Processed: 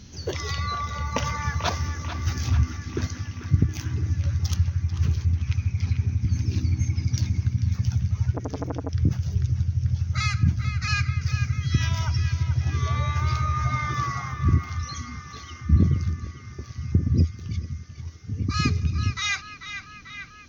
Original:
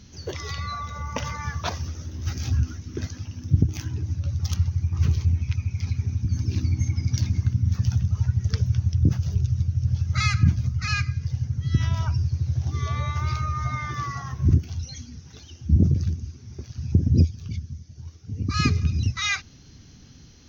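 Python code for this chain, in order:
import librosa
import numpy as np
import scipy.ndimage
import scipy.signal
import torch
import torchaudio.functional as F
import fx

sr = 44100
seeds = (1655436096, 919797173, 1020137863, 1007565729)

y = fx.high_shelf(x, sr, hz=2200.0, db=9.0, at=(11.21, 12.43))
y = fx.rider(y, sr, range_db=3, speed_s=0.5)
y = fx.high_shelf(y, sr, hz=5800.0, db=-7.5, at=(5.71, 6.22))
y = fx.echo_banded(y, sr, ms=441, feedback_pct=76, hz=1800.0, wet_db=-8)
y = fx.transformer_sat(y, sr, knee_hz=890.0, at=(8.32, 8.89))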